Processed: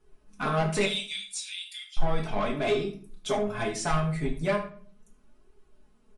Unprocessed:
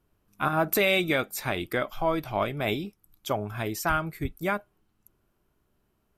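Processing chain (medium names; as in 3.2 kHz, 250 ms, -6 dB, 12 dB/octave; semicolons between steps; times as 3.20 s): 0.85–1.97 s: steep high-pass 2.9 kHz 36 dB/octave; comb 4.7 ms, depth 70%; in parallel at -1 dB: compression 6:1, threshold -34 dBFS, peak gain reduction 16.5 dB; on the sum: flange 0.36 Hz, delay 2.3 ms, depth 6 ms, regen +27%; saturation -22.5 dBFS, distortion -13 dB; on a send: early reflections 26 ms -16 dB, 76 ms -16 dB; on the sum: simulated room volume 41 m³, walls mixed, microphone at 0.49 m; MP3 48 kbps 24 kHz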